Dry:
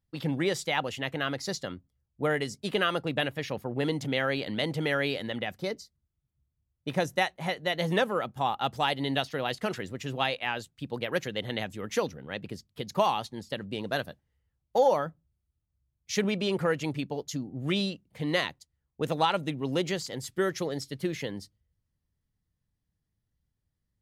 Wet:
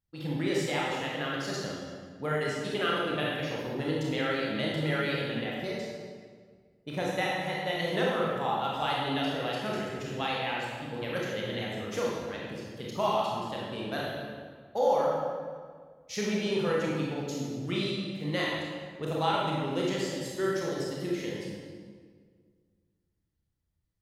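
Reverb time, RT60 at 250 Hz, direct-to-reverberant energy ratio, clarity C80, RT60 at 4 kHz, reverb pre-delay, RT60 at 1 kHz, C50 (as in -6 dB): 1.8 s, 2.1 s, -5.0 dB, 1.0 dB, 1.3 s, 24 ms, 1.7 s, -1.5 dB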